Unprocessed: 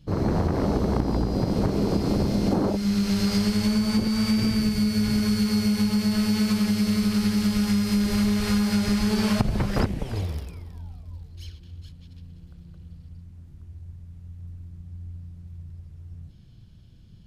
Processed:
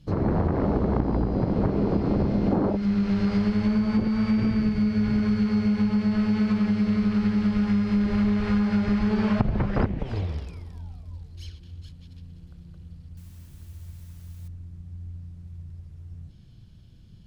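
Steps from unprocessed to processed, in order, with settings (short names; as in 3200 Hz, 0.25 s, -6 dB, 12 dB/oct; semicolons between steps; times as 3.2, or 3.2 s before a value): treble ducked by the level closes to 2100 Hz, closed at -21.5 dBFS; 13.17–14.48 requantised 10-bit, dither triangular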